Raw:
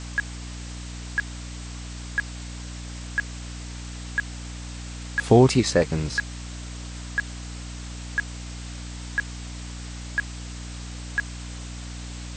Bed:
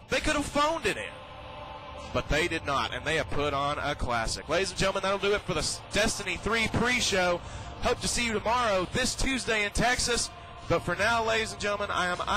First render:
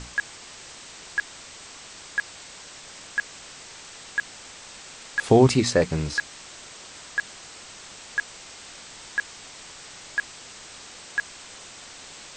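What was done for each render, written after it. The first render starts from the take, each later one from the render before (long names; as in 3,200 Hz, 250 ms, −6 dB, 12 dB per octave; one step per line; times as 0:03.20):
mains-hum notches 60/120/180/240/300 Hz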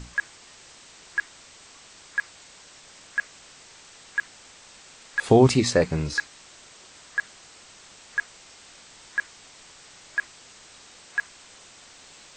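noise reduction from a noise print 6 dB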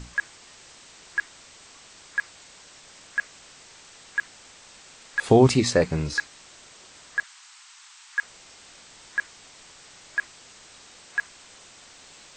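0:07.23–0:08.23: Butterworth high-pass 870 Hz 48 dB per octave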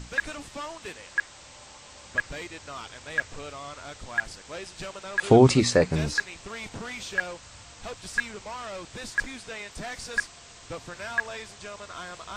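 mix in bed −11.5 dB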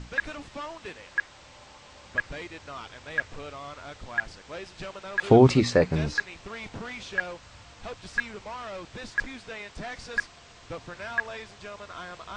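high-frequency loss of the air 110 metres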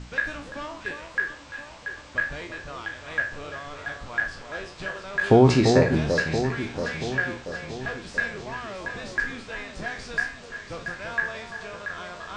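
peak hold with a decay on every bin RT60 0.39 s
on a send: delay that swaps between a low-pass and a high-pass 341 ms, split 1,200 Hz, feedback 73%, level −5.5 dB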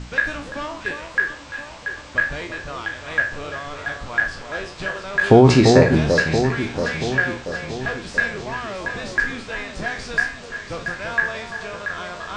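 level +6 dB
brickwall limiter −1 dBFS, peak gain reduction 3 dB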